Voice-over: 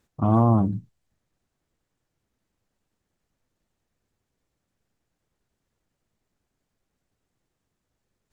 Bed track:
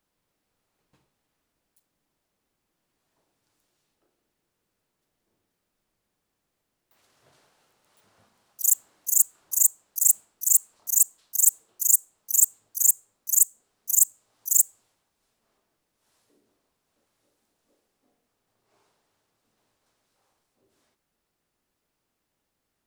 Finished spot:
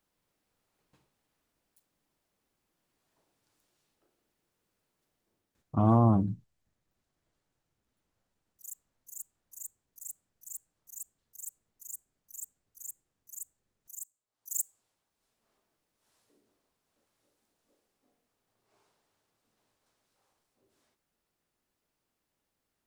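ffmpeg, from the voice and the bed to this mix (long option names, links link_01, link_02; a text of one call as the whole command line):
ffmpeg -i stem1.wav -i stem2.wav -filter_complex "[0:a]adelay=5550,volume=-4dB[link_01];[1:a]volume=18.5dB,afade=type=out:start_time=5.09:duration=0.97:silence=0.0749894,afade=type=in:start_time=14.27:duration=1.25:silence=0.0944061[link_02];[link_01][link_02]amix=inputs=2:normalize=0" out.wav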